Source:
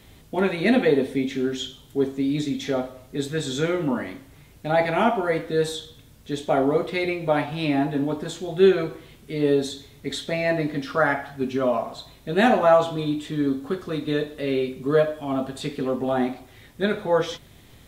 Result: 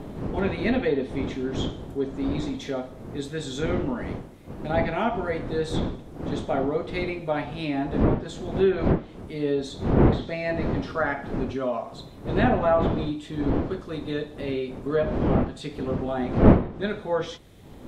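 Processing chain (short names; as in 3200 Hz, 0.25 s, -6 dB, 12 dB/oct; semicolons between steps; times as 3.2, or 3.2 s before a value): wind noise 330 Hz -23 dBFS; treble ducked by the level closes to 2600 Hz, closed at -11 dBFS; gain -5 dB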